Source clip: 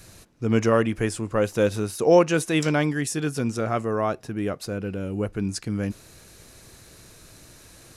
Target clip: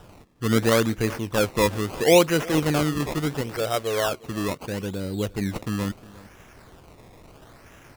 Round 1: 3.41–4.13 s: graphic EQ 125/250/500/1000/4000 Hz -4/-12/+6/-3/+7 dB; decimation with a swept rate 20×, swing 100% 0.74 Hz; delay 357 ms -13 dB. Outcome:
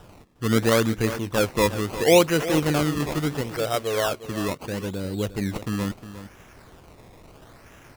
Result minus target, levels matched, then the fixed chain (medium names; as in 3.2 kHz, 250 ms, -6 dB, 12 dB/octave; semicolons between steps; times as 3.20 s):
echo-to-direct +7.5 dB
3.41–4.13 s: graphic EQ 125/250/500/1000/4000 Hz -4/-12/+6/-3/+7 dB; decimation with a swept rate 20×, swing 100% 0.74 Hz; delay 357 ms -20.5 dB